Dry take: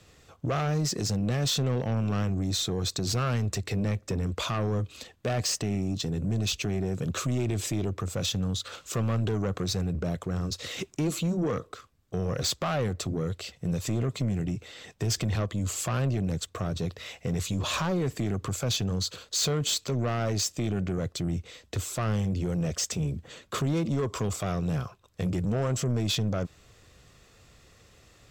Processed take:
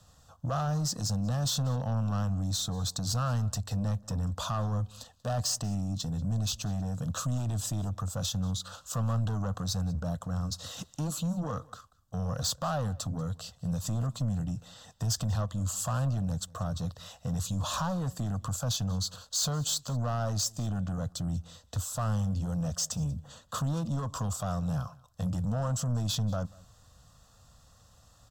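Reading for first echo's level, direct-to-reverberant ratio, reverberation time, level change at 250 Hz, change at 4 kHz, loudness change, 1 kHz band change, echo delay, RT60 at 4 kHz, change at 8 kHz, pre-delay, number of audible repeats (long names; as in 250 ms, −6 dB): −23.5 dB, no reverb audible, no reverb audible, −4.0 dB, −4.0 dB, −2.5 dB, −1.0 dB, 188 ms, no reverb audible, −1.0 dB, no reverb audible, 1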